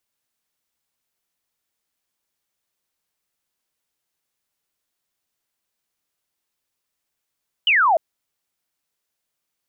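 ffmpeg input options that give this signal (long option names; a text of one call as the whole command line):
ffmpeg -f lavfi -i "aevalsrc='0.224*clip(t/0.002,0,1)*clip((0.3-t)/0.002,0,1)*sin(2*PI*3100*0.3/log(610/3100)*(exp(log(610/3100)*t/0.3)-1))':duration=0.3:sample_rate=44100" out.wav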